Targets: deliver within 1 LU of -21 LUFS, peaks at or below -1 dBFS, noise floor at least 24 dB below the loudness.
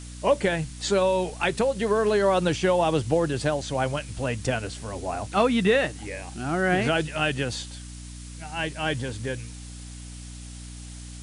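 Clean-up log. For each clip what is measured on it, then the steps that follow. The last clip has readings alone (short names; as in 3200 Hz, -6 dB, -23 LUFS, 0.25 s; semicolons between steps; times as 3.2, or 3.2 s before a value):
hum 60 Hz; harmonics up to 300 Hz; hum level -38 dBFS; noise floor -40 dBFS; noise floor target -50 dBFS; loudness -25.5 LUFS; peak -10.0 dBFS; loudness target -21.0 LUFS
-> notches 60/120/180/240/300 Hz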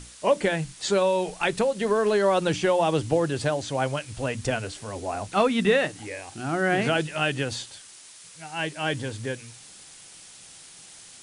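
hum none; noise floor -48 dBFS; noise floor target -50 dBFS
-> noise print and reduce 6 dB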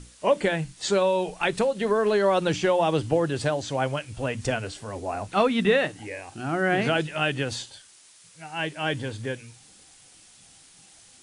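noise floor -53 dBFS; loudness -25.5 LUFS; peak -10.0 dBFS; loudness target -21.0 LUFS
-> gain +4.5 dB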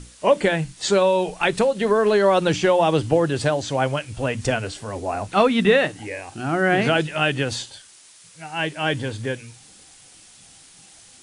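loudness -21.0 LUFS; peak -5.5 dBFS; noise floor -49 dBFS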